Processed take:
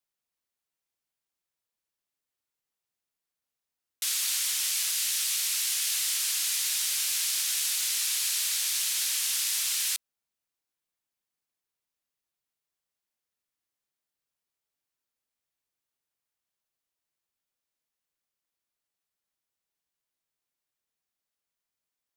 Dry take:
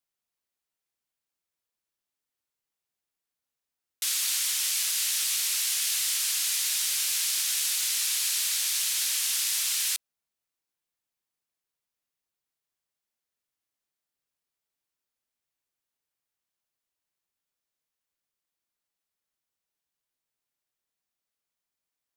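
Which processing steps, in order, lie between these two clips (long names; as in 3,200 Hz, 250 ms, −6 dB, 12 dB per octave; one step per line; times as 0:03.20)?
0:04.94–0:05.86: high-pass filter 810 Hz → 390 Hz 6 dB per octave
level −1 dB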